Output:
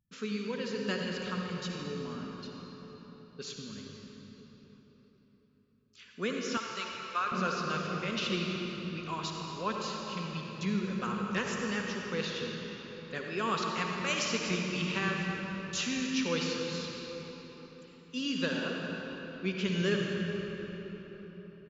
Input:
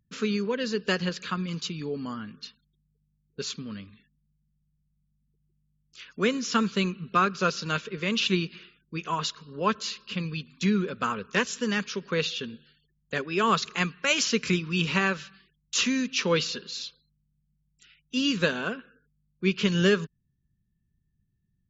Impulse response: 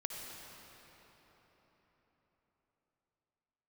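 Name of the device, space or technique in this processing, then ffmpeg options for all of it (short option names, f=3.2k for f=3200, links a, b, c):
cathedral: -filter_complex "[1:a]atrim=start_sample=2205[a];[0:a][a]afir=irnorm=-1:irlink=0,asettb=1/sr,asplit=3[b][c][d];[b]atrim=end=6.574[e];[c]atrim=start=6.57:end=7.32,asetpts=PTS-STARTPTS,afade=t=in:d=0.004:c=qsin,afade=t=out:st=0.746:d=0.004:c=qsin,highpass=680[f];[d]atrim=start=7.316[g];[e][f]acrossfade=d=0.004:c1=hsin:c2=qsin[h];[h][g]acrossfade=d=0.004:c1=qsin:c2=hsin,asplit=5[i][j][k][l][m];[j]adelay=231,afreqshift=-39,volume=-20dB[n];[k]adelay=462,afreqshift=-78,volume=-25.4dB[o];[l]adelay=693,afreqshift=-117,volume=-30.7dB[p];[m]adelay=924,afreqshift=-156,volume=-36.1dB[q];[i][n][o][p][q]amix=inputs=5:normalize=0,volume=-6.5dB"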